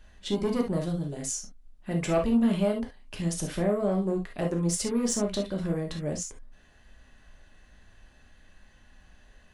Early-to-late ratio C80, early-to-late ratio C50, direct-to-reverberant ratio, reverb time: 51.5 dB, 9.0 dB, 1.5 dB, no single decay rate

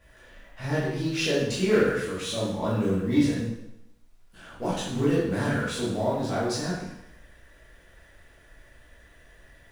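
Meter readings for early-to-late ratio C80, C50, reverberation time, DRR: 4.0 dB, 0.5 dB, 0.85 s, -9.5 dB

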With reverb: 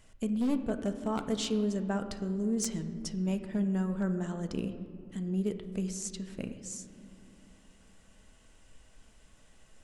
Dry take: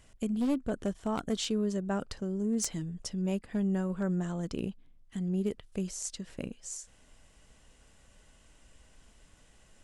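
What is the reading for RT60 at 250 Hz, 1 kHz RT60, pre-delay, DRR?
4.2 s, 2.4 s, 4 ms, 7.5 dB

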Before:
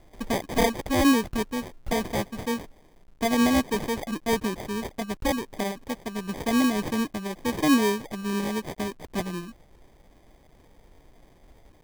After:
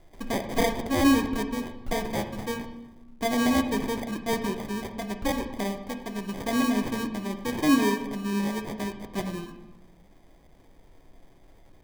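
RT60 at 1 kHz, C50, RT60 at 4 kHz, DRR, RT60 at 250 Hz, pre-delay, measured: 0.95 s, 9.0 dB, 0.80 s, 6.0 dB, 1.4 s, 3 ms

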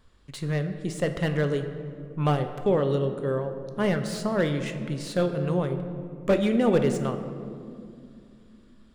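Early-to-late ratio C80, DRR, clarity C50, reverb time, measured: 10.0 dB, 7.0 dB, 9.0 dB, 2.4 s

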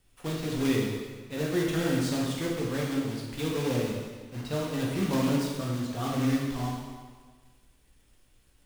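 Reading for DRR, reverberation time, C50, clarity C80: -3.0 dB, 1.5 s, 0.5 dB, 3.0 dB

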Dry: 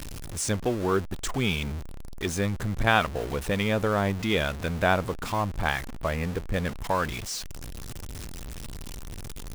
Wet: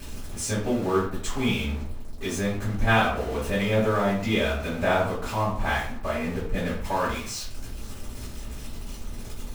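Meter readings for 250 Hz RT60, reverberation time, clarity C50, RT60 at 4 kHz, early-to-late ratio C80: 0.60 s, 0.55 s, 4.5 dB, 0.40 s, 8.5 dB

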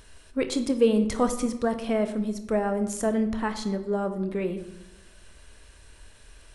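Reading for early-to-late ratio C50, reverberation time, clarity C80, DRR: 11.0 dB, 0.95 s, 13.0 dB, 8.0 dB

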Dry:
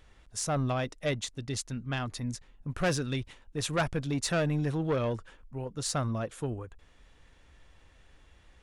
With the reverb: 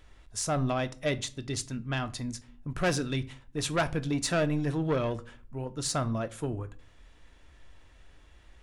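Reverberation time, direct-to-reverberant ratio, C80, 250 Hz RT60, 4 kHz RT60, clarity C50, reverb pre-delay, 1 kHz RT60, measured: 0.40 s, 11.0 dB, 24.5 dB, 0.65 s, 0.30 s, 19.5 dB, 3 ms, 0.35 s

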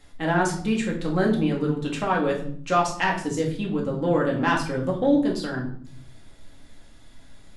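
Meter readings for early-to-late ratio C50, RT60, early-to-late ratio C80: 8.0 dB, 0.60 s, 11.5 dB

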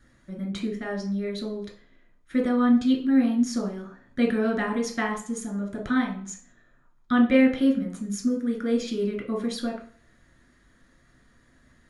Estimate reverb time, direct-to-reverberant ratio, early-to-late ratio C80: 0.45 s, -0.5 dB, 13.5 dB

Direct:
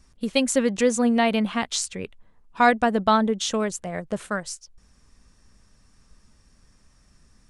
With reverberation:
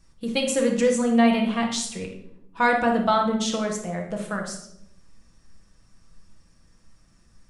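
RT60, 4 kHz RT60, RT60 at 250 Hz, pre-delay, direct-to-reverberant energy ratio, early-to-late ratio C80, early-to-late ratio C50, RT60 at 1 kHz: 0.80 s, 0.55 s, 1.2 s, 6 ms, 0.0 dB, 10.0 dB, 5.5 dB, 0.65 s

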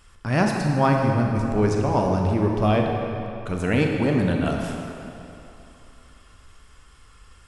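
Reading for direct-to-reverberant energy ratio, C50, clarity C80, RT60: 1.0 dB, 2.0 dB, 3.0 dB, 2.9 s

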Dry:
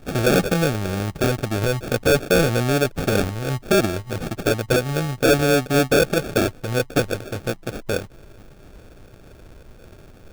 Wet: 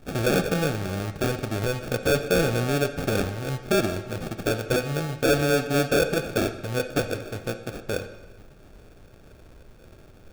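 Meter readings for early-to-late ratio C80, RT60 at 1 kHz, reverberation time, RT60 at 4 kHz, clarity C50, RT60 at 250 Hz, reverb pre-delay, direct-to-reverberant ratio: 12.0 dB, 1.2 s, 1.2 s, 0.95 s, 10.5 dB, 1.0 s, 23 ms, 8.5 dB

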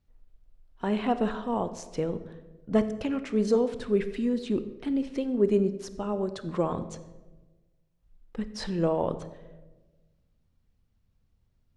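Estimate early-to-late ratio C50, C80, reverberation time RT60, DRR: 13.0 dB, 15.0 dB, 1.2 s, 11.0 dB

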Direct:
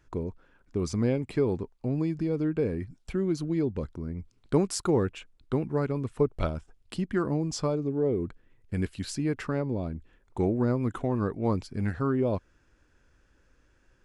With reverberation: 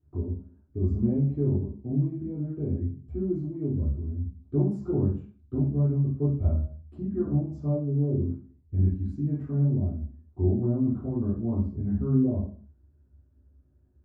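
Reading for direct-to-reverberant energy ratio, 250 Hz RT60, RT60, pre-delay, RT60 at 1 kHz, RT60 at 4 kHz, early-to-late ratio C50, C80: -10.5 dB, 0.60 s, 0.50 s, 3 ms, 0.45 s, 0.45 s, 6.0 dB, 9.5 dB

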